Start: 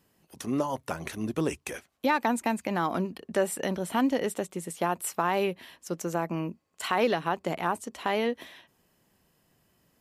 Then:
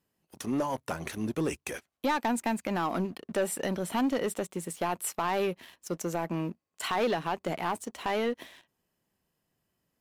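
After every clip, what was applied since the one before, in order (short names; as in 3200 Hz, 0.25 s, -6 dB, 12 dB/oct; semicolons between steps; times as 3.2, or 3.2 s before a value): sample leveller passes 2; gain -7.5 dB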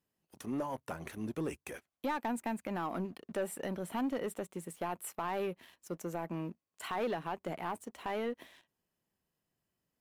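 dynamic EQ 5300 Hz, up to -7 dB, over -52 dBFS, Q 0.77; gain -6.5 dB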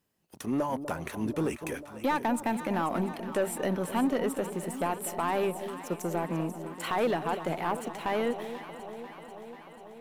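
echo with dull and thin repeats by turns 0.245 s, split 860 Hz, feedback 83%, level -10.5 dB; gain +7 dB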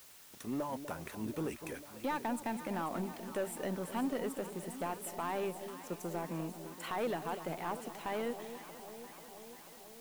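added noise white -49 dBFS; gain -8 dB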